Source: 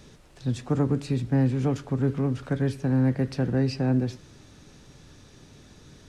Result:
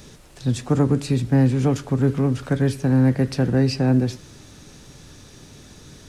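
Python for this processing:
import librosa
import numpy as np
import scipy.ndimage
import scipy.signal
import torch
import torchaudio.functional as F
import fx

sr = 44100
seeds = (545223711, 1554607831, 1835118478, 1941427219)

y = fx.high_shelf(x, sr, hz=6900.0, db=9.0)
y = F.gain(torch.from_numpy(y), 5.5).numpy()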